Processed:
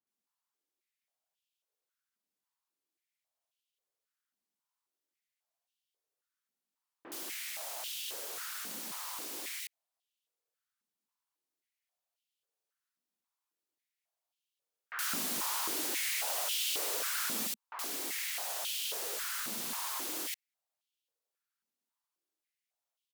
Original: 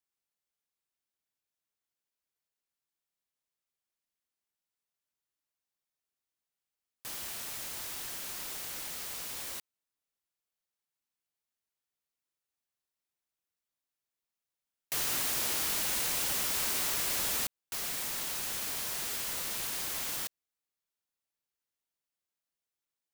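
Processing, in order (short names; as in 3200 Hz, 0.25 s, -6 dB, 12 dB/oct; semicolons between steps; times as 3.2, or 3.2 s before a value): bands offset in time lows, highs 70 ms, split 2000 Hz; tube stage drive 29 dB, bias 0.4; stepped high-pass 3.7 Hz 220–3000 Hz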